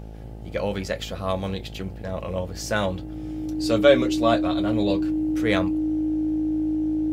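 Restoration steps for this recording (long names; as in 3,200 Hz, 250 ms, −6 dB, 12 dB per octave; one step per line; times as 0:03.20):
hum removal 54.1 Hz, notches 16
notch filter 310 Hz, Q 30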